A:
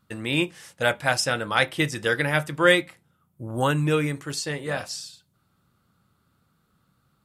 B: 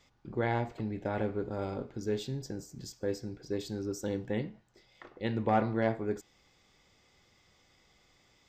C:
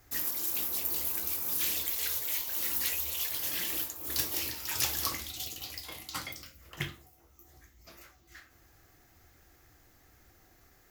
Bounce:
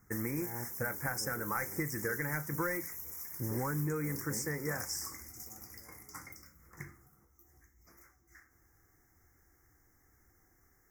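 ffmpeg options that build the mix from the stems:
ffmpeg -i stem1.wav -i stem2.wav -i stem3.wav -filter_complex "[0:a]volume=-1dB,asplit=2[link_01][link_02];[1:a]volume=-7.5dB[link_03];[2:a]acompressor=threshold=-35dB:ratio=3,volume=-6dB[link_04];[link_02]apad=whole_len=374373[link_05];[link_03][link_05]sidechaingate=range=-25dB:threshold=-45dB:ratio=16:detection=peak[link_06];[link_01][link_06]amix=inputs=2:normalize=0,asoftclip=type=tanh:threshold=-14dB,acompressor=threshold=-31dB:ratio=10,volume=0dB[link_07];[link_04][link_07]amix=inputs=2:normalize=0,asuperstop=centerf=3400:order=12:qfactor=1.1,equalizer=frequency=630:width=4:gain=-11" out.wav

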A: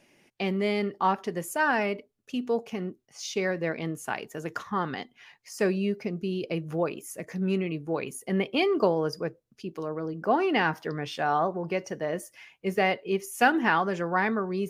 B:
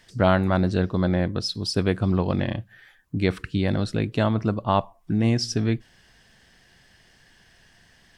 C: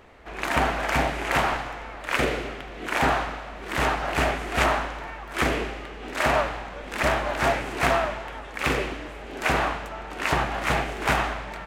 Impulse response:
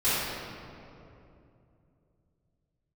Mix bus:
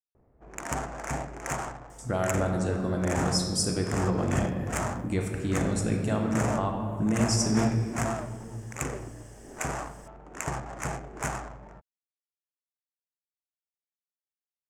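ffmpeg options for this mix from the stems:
-filter_complex "[1:a]alimiter=limit=-13.5dB:level=0:latency=1:release=271,adelay=1900,volume=-6dB,asplit=2[link_01][link_02];[link_02]volume=-14dB[link_03];[2:a]equalizer=frequency=130:width_type=o:width=0.77:gain=7,adynamicsmooth=sensitivity=1.5:basefreq=560,adelay=150,volume=-9.5dB[link_04];[3:a]atrim=start_sample=2205[link_05];[link_03][link_05]afir=irnorm=-1:irlink=0[link_06];[link_01][link_04][link_06]amix=inputs=3:normalize=0,highshelf=frequency=5500:width_type=q:width=3:gain=11"

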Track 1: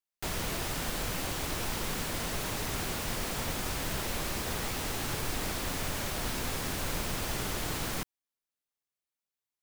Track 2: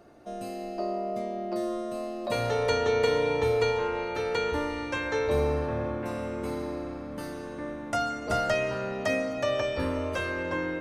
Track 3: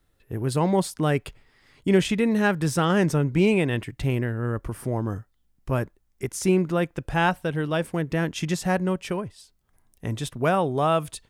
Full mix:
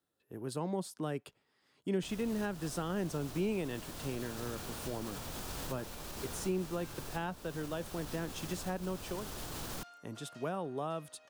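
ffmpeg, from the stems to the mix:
ffmpeg -i stem1.wav -i stem2.wav -i stem3.wav -filter_complex "[0:a]alimiter=level_in=4dB:limit=-24dB:level=0:latency=1:release=70,volume=-4dB,adelay=1800,volume=-3dB[link_01];[1:a]asoftclip=type=tanh:threshold=-27dB,highpass=1000,adelay=1850,volume=-19dB[link_02];[2:a]highpass=190,volume=-11dB,asplit=2[link_03][link_04];[link_04]apad=whole_len=503780[link_05];[link_01][link_05]sidechaincompress=threshold=-34dB:ratio=8:attack=8.3:release=1160[link_06];[link_06][link_02][link_03]amix=inputs=3:normalize=0,equalizer=frequency=2100:width_type=o:width=0.58:gain=-6.5,acrossover=split=310[link_07][link_08];[link_08]acompressor=threshold=-36dB:ratio=4[link_09];[link_07][link_09]amix=inputs=2:normalize=0" out.wav

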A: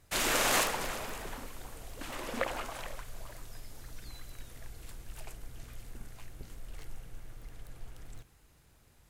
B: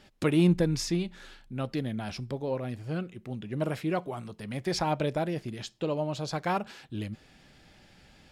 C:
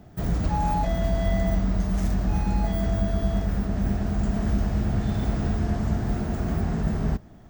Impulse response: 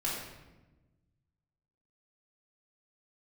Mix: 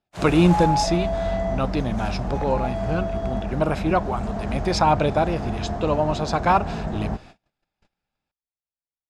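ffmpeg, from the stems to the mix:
-filter_complex "[0:a]volume=-12.5dB[link_01];[1:a]lowpass=frequency=2100:poles=1,aecho=1:1:0.8:0.32,crystalizer=i=4.5:c=0,volume=2.5dB[link_02];[2:a]volume=-5dB[link_03];[link_01][link_02][link_03]amix=inputs=3:normalize=0,agate=range=-35dB:threshold=-44dB:ratio=16:detection=peak,lowpass=8500,equalizer=frequency=760:width=0.84:gain=11"

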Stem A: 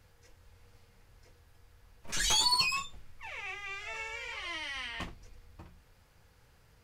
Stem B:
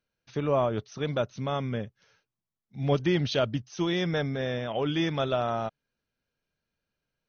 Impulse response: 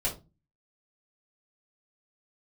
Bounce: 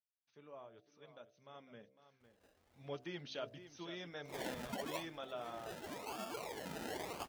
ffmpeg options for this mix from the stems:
-filter_complex "[0:a]adynamicequalizer=threshold=0.00708:dfrequency=2900:dqfactor=0.93:tfrequency=2900:tqfactor=0.93:attack=5:release=100:ratio=0.375:range=2.5:mode=boostabove:tftype=bell,alimiter=limit=-22.5dB:level=0:latency=1:release=201,acrusher=samples=31:mix=1:aa=0.000001:lfo=1:lforange=18.6:lforate=0.93,adelay=2200,volume=-0.5dB,asplit=2[link_01][link_02];[link_02]volume=-23.5dB[link_03];[1:a]bandreject=frequency=65.18:width_type=h:width=4,bandreject=frequency=130.36:width_type=h:width=4,bandreject=frequency=195.54:width_type=h:width=4,bandreject=frequency=260.72:width_type=h:width=4,bandreject=frequency=325.9:width_type=h:width=4,bandreject=frequency=391.08:width_type=h:width=4,bandreject=frequency=456.26:width_type=h:width=4,bandreject=frequency=521.44:width_type=h:width=4,bandreject=frequency=586.62:width_type=h:width=4,bandreject=frequency=651.8:width_type=h:width=4,bandreject=frequency=716.98:width_type=h:width=4,volume=-12dB,afade=type=in:start_time=1.4:duration=0.72:silence=0.316228,asplit=3[link_04][link_05][link_06];[link_05]volume=-12.5dB[link_07];[link_06]apad=whole_len=398374[link_08];[link_01][link_08]sidechaincompress=threshold=-43dB:ratio=8:attack=16:release=121[link_09];[link_03][link_07]amix=inputs=2:normalize=0,aecho=0:1:504:1[link_10];[link_09][link_04][link_10]amix=inputs=3:normalize=0,highpass=frequency=400:poles=1,flanger=delay=1.6:depth=3.5:regen=-65:speed=1.4:shape=triangular"

